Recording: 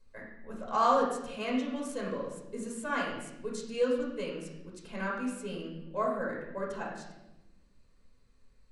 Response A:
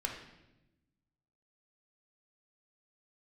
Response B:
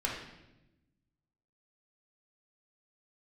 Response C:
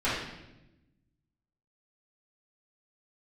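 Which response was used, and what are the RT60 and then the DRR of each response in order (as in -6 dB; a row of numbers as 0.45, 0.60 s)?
B; 0.95, 0.95, 0.95 s; 0.5, -3.5, -13.0 dB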